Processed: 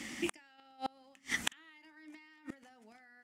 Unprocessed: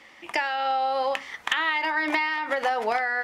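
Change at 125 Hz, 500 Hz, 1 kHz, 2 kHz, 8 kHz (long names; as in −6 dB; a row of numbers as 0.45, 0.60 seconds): can't be measured, −20.5 dB, −23.5 dB, −18.0 dB, +2.0 dB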